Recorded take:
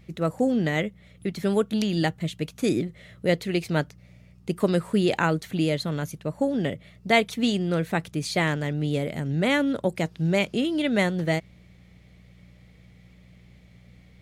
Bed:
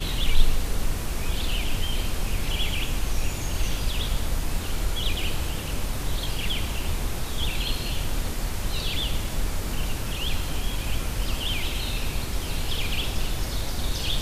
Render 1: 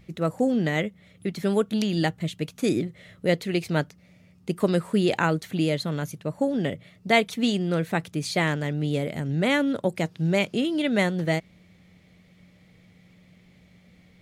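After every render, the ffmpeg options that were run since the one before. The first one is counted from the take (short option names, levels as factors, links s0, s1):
-af "bandreject=f=60:t=h:w=4,bandreject=f=120:t=h:w=4"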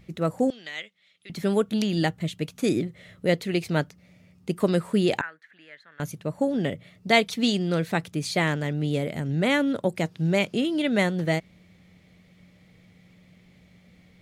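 -filter_complex "[0:a]asettb=1/sr,asplit=3[s0][s1][s2];[s0]atrim=end=0.504[s3];[s1]atrim=start=0.5:end=1.3,asetpts=PTS-STARTPTS,afade=t=in:d=0.004:c=qsin,afade=t=out:st=0.796:d=0.004:c=qsin,bandpass=f=3700:t=q:w=1.3[s4];[s2]atrim=start=1.296[s5];[s3][s4]acrossfade=d=0.004:c1=hsin:c2=qsin[s6];[s6][s5]acrossfade=d=0.004:c1=qsin:c2=hsin,asettb=1/sr,asplit=3[s7][s8][s9];[s7]atrim=end=5.214[s10];[s8]atrim=start=5.21:end=6,asetpts=PTS-STARTPTS,afade=t=in:d=0.004:c=qsin,afade=t=out:st=0.786:d=0.004:c=qsin,bandpass=f=1700:t=q:w=7.9[s11];[s9]atrim=start=5.996[s12];[s10][s11]acrossfade=d=0.004:c1=hsin:c2=qsin[s13];[s13][s12]acrossfade=d=0.004:c1=qsin:c2=hsin,asettb=1/sr,asplit=3[s14][s15][s16];[s14]atrim=end=7.094[s17];[s15]atrim=start=7.09:end=8.01,asetpts=PTS-STARTPTS,afade=t=in:d=0.004:c=qsin,afade=t=out:st=0.916:d=0.004:c=qsin,equalizer=f=4700:w=1.5:g=5.5[s18];[s16]atrim=start=8.006[s19];[s17][s18]acrossfade=d=0.004:c1=hsin:c2=qsin[s20];[s20][s19]acrossfade=d=0.004:c1=qsin:c2=hsin"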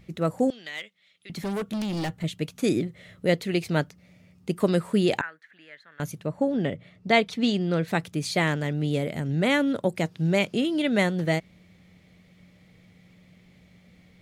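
-filter_complex "[0:a]asettb=1/sr,asplit=3[s0][s1][s2];[s0]atrim=end=0.594[s3];[s1]atrim=start=0.59:end=2.24,asetpts=PTS-STARTPTS,afade=t=in:d=0.004:c=qsin,afade=t=out:st=1.646:d=0.004:c=qsin,asoftclip=type=hard:threshold=0.0473[s4];[s2]atrim=start=2.236[s5];[s3][s4]acrossfade=d=0.004:c1=hsin:c2=qsin[s6];[s6][s5]acrossfade=d=0.004:c1=qsin:c2=hsin,asettb=1/sr,asplit=3[s7][s8][s9];[s7]atrim=end=6.264[s10];[s8]atrim=start=6.26:end=7.88,asetpts=PTS-STARTPTS,afade=t=in:d=0.004:c=qsin,afade=t=out:st=1.616:d=0.004:c=qsin,aemphasis=mode=reproduction:type=50kf[s11];[s9]atrim=start=7.876[s12];[s10][s11]acrossfade=d=0.004:c1=hsin:c2=qsin[s13];[s13][s12]acrossfade=d=0.004:c1=qsin:c2=hsin"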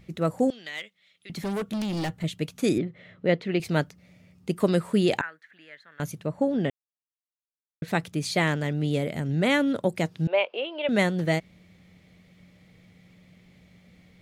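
-filter_complex "[0:a]asettb=1/sr,asplit=3[s0][s1][s2];[s0]atrim=end=2.784[s3];[s1]atrim=start=2.78:end=3.6,asetpts=PTS-STARTPTS,afade=t=in:d=0.004:c=qsin,afade=t=out:st=0.816:d=0.004:c=qsin,highpass=120,lowpass=3000[s4];[s2]atrim=start=3.596[s5];[s3][s4]acrossfade=d=0.004:c1=hsin:c2=qsin[s6];[s6][s5]acrossfade=d=0.004:c1=qsin:c2=hsin,asettb=1/sr,asplit=3[s7][s8][s9];[s7]atrim=end=10.274[s10];[s8]atrim=start=10.27:end=10.89,asetpts=PTS-STARTPTS,afade=t=in:d=0.004:c=qsin,afade=t=out:st=0.616:d=0.004:c=qsin,highpass=f=500:w=0.5412,highpass=f=500:w=1.3066,equalizer=f=530:t=q:w=4:g=7,equalizer=f=940:t=q:w=4:g=6,equalizer=f=1400:t=q:w=4:g=-4,equalizer=f=1900:t=q:w=4:g=-8,equalizer=f=2800:t=q:w=4:g=6,lowpass=f=2900:w=0.5412,lowpass=f=2900:w=1.3066[s11];[s9]atrim=start=10.886[s12];[s10][s11]acrossfade=d=0.004:c1=hsin:c2=qsin[s13];[s13][s12]acrossfade=d=0.004:c1=qsin:c2=hsin,asplit=3[s14][s15][s16];[s14]atrim=end=6.7,asetpts=PTS-STARTPTS,afade=t=out:st=6.696:d=0.004:c=hsin[s17];[s15]atrim=start=6.7:end=7.82,asetpts=PTS-STARTPTS,volume=0[s18];[s16]atrim=start=7.82,asetpts=PTS-STARTPTS,afade=t=in:d=0.004:c=hsin[s19];[s17][s18][s19]concat=n=3:v=0:a=1"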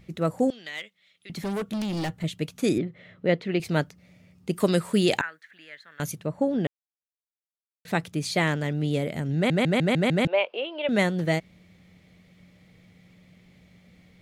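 -filter_complex "[0:a]asettb=1/sr,asplit=3[s0][s1][s2];[s0]atrim=end=4.534[s3];[s1]atrim=start=4.53:end=6.16,asetpts=PTS-STARTPTS,afade=t=in:d=0.004:c=qsin,afade=t=out:st=1.626:d=0.004:c=qsin,highshelf=f=2500:g=7[s4];[s2]atrim=start=6.156[s5];[s3][s4]acrossfade=d=0.004:c1=hsin:c2=qsin[s6];[s6][s5]acrossfade=d=0.004:c1=qsin:c2=hsin,asplit=9[s7][s8][s9][s10][s11][s12][s13][s14][s15];[s7]atrim=end=6.67,asetpts=PTS-STARTPTS,afade=t=out:st=6.666:d=0.004:c=hsin[s16];[s8]atrim=start=6.67:end=7.85,asetpts=PTS-STARTPTS,volume=0[s17];[s9]atrim=start=7.85:end=9.502,asetpts=PTS-STARTPTS,afade=t=in:d=0.004:c=hsin[s18];[s10]atrim=start=9.348:end=9.502[s19];[s11]atrim=start=9.348:end=9.502[s20];[s12]atrim=start=9.348:end=9.502[s21];[s13]atrim=start=9.348:end=9.502[s22];[s14]atrim=start=9.348:end=9.502[s23];[s15]atrim=start=10.248[s24];[s16][s17][s18]concat=n=3:v=0:a=1[s25];[s25][s19]acrossfade=d=0.004:c1=hsin:c2=hsin[s26];[s26][s20]acrossfade=d=0.004:c1=hsin:c2=hsin[s27];[s27][s21]acrossfade=d=0.004:c1=hsin:c2=hsin[s28];[s28][s22]acrossfade=d=0.004:c1=hsin:c2=hsin[s29];[s29][s23]acrossfade=d=0.004:c1=hsin:c2=hsin[s30];[s30][s24]acrossfade=d=0.004:c1=hsin:c2=hsin"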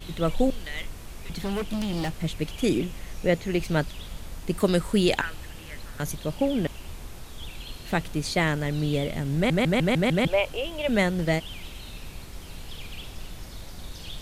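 -filter_complex "[1:a]volume=0.251[s0];[0:a][s0]amix=inputs=2:normalize=0"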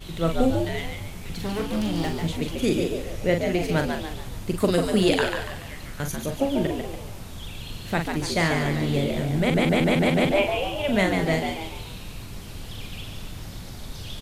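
-filter_complex "[0:a]asplit=2[s0][s1];[s1]adelay=42,volume=0.473[s2];[s0][s2]amix=inputs=2:normalize=0,asplit=6[s3][s4][s5][s6][s7][s8];[s4]adelay=143,afreqshift=81,volume=0.531[s9];[s5]adelay=286,afreqshift=162,volume=0.219[s10];[s6]adelay=429,afreqshift=243,volume=0.0891[s11];[s7]adelay=572,afreqshift=324,volume=0.0367[s12];[s8]adelay=715,afreqshift=405,volume=0.015[s13];[s3][s9][s10][s11][s12][s13]amix=inputs=6:normalize=0"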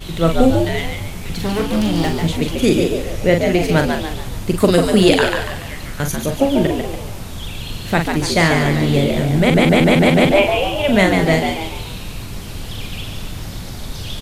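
-af "volume=2.66,alimiter=limit=0.891:level=0:latency=1"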